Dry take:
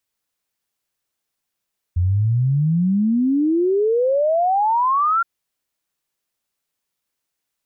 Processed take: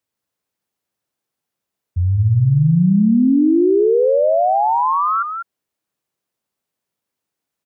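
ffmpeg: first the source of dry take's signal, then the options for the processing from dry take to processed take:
-f lavfi -i "aevalsrc='0.188*clip(min(t,3.27-t)/0.01,0,1)*sin(2*PI*85*3.27/log(1400/85)*(exp(log(1400/85)*t/3.27)-1))':d=3.27:s=44100"
-filter_complex "[0:a]highpass=88,tiltshelf=f=1.1k:g=4.5,asplit=2[a][b];[b]aecho=0:1:197:0.447[c];[a][c]amix=inputs=2:normalize=0"

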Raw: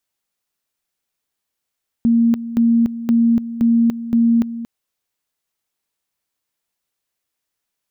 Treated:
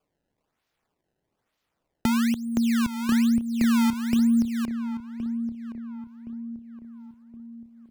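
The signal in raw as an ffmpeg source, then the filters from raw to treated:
-f lavfi -i "aevalsrc='pow(10,(-10.5-13.5*gte(mod(t,0.52),0.29))/20)*sin(2*PI*232*t)':d=2.6:s=44100"
-filter_complex "[0:a]acrossover=split=130[a][b];[b]acompressor=threshold=-24dB:ratio=6[c];[a][c]amix=inputs=2:normalize=0,acrusher=samples=22:mix=1:aa=0.000001:lfo=1:lforange=35.2:lforate=1.1,asplit=2[d][e];[e]adelay=1069,lowpass=f=1.1k:p=1,volume=-10dB,asplit=2[f][g];[g]adelay=1069,lowpass=f=1.1k:p=1,volume=0.47,asplit=2[h][i];[i]adelay=1069,lowpass=f=1.1k:p=1,volume=0.47,asplit=2[j][k];[k]adelay=1069,lowpass=f=1.1k:p=1,volume=0.47,asplit=2[l][m];[m]adelay=1069,lowpass=f=1.1k:p=1,volume=0.47[n];[d][f][h][j][l][n]amix=inputs=6:normalize=0"

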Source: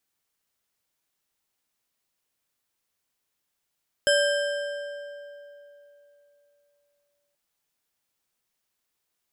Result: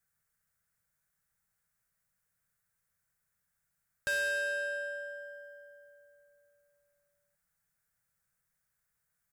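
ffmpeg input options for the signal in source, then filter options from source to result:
-f lavfi -i "aevalsrc='0.112*pow(10,-3*t/3.36)*sin(2*PI*577*t)+0.0794*pow(10,-3*t/2.479)*sin(2*PI*1590.8*t)+0.0562*pow(10,-3*t/2.025)*sin(2*PI*3118.1*t)+0.0398*pow(10,-3*t/1.742)*sin(2*PI*5154.3*t)+0.0282*pow(10,-3*t/1.545)*sin(2*PI*7697.2*t)+0.02*pow(10,-3*t/1.397)*sin(2*PI*10755.3*t)':d=3.28:s=44100"
-filter_complex "[0:a]firequalizer=gain_entry='entry(180,0);entry(280,-28);entry(460,-11);entry(1000,-13);entry(1500,-1);entry(2900,-20);entry(8000,-8)':delay=0.05:min_phase=1,asplit=2[a][b];[b]acompressor=threshold=-36dB:ratio=6,volume=1.5dB[c];[a][c]amix=inputs=2:normalize=0,asoftclip=type=tanh:threshold=-28.5dB"

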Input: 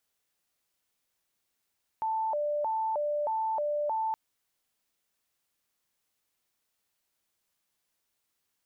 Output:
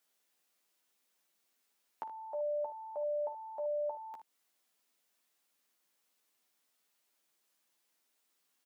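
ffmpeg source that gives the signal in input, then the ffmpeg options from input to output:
-f lavfi -i "aevalsrc='0.0447*sin(2*PI*(737.5*t+146.5/1.6*(0.5-abs(mod(1.6*t,1)-0.5))))':d=2.12:s=44100"
-af "highpass=f=190:w=0.5412,highpass=f=190:w=1.3066,acompressor=threshold=-40dB:ratio=5,aecho=1:1:12|56|76:0.562|0.2|0.237"

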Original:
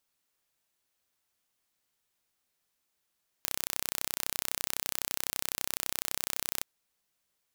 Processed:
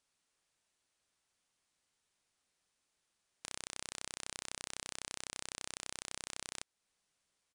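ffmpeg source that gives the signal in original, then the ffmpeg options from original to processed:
-f lavfi -i "aevalsrc='0.631*eq(mod(n,1382),0)':d=3.19:s=44100"
-af "alimiter=limit=-11.5dB:level=0:latency=1:release=292,aresample=22050,aresample=44100"

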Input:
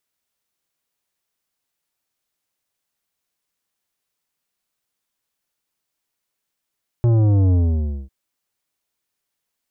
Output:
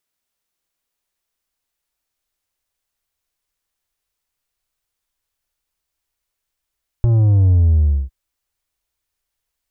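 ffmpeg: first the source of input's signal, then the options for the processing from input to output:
-f lavfi -i "aevalsrc='0.211*clip((1.05-t)/0.57,0,1)*tanh(3.55*sin(2*PI*120*1.05/log(65/120)*(exp(log(65/120)*t/1.05)-1)))/tanh(3.55)':d=1.05:s=44100"
-af "asubboost=boost=9.5:cutoff=61,acompressor=threshold=-10dB:ratio=6"

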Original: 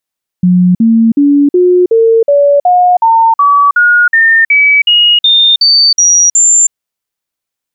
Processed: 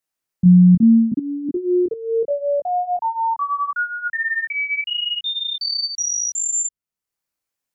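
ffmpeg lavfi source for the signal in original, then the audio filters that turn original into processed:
-f lavfi -i "aevalsrc='0.668*clip(min(mod(t,0.37),0.32-mod(t,0.37))/0.005,0,1)*sin(2*PI*180*pow(2,floor(t/0.37)/3)*mod(t,0.37))':d=6.29:s=44100"
-filter_complex "[0:a]equalizer=f=3.5k:t=o:w=0.48:g=-4.5,acrossover=split=230[a][b];[b]acompressor=threshold=-42dB:ratio=1.5[c];[a][c]amix=inputs=2:normalize=0,flanger=delay=19:depth=4.1:speed=0.76"

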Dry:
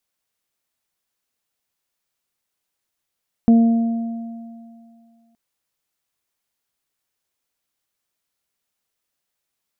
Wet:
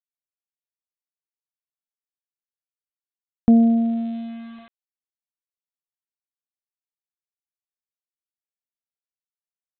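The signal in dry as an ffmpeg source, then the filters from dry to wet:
-f lavfi -i "aevalsrc='0.422*pow(10,-3*t/2.22)*sin(2*PI*230*t)+0.0562*pow(10,-3*t/1.14)*sin(2*PI*460*t)+0.0562*pow(10,-3*t/2.69)*sin(2*PI*690*t)':d=1.87:s=44100"
-af "bandreject=f=640:w=12,aresample=8000,aeval=exprs='val(0)*gte(abs(val(0)),0.01)':c=same,aresample=44100"

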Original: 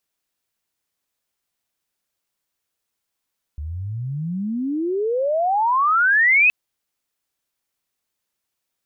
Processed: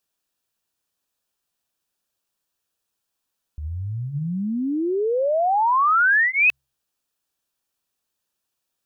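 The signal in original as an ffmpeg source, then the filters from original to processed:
-f lavfi -i "aevalsrc='pow(10,(-26.5+15.5*t/2.92)/20)*sin(2*PI*71*2.92/log(2600/71)*(exp(log(2600/71)*t/2.92)-1))':d=2.92:s=44100"
-af "bandreject=f=2.1k:w=5.2,bandreject=f=66.33:t=h:w=4,bandreject=f=132.66:t=h:w=4"

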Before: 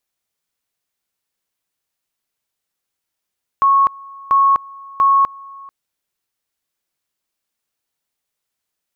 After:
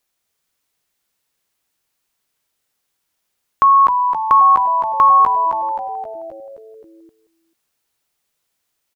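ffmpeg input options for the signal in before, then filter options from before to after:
-f lavfi -i "aevalsrc='pow(10,(-9-24*gte(mod(t,0.69),0.25))/20)*sin(2*PI*1100*t)':d=2.07:s=44100"
-filter_complex "[0:a]asplit=2[a][b];[b]acompressor=threshold=-21dB:ratio=6,volume=-1dB[c];[a][c]amix=inputs=2:normalize=0,bandreject=f=60:t=h:w=6,bandreject=f=120:t=h:w=6,bandreject=f=180:t=h:w=6,bandreject=f=240:t=h:w=6,asplit=8[d][e][f][g][h][i][j][k];[e]adelay=263,afreqshift=-110,volume=-6.5dB[l];[f]adelay=526,afreqshift=-220,volume=-11.4dB[m];[g]adelay=789,afreqshift=-330,volume=-16.3dB[n];[h]adelay=1052,afreqshift=-440,volume=-21.1dB[o];[i]adelay=1315,afreqshift=-550,volume=-26dB[p];[j]adelay=1578,afreqshift=-660,volume=-30.9dB[q];[k]adelay=1841,afreqshift=-770,volume=-35.8dB[r];[d][l][m][n][o][p][q][r]amix=inputs=8:normalize=0"

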